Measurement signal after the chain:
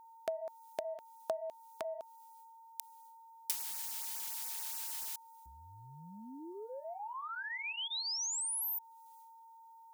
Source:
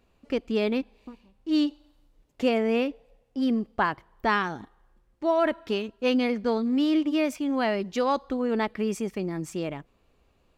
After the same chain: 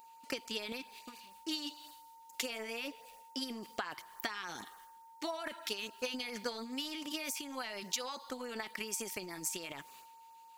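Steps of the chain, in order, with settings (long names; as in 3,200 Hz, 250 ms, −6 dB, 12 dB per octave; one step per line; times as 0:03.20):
first difference
brickwall limiter −32 dBFS
downward compressor 3 to 1, threshold −54 dBFS
transient designer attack +8 dB, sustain +12 dB
auto-filter notch sine 7 Hz 500–3,600 Hz
steady tone 910 Hz −67 dBFS
level +12.5 dB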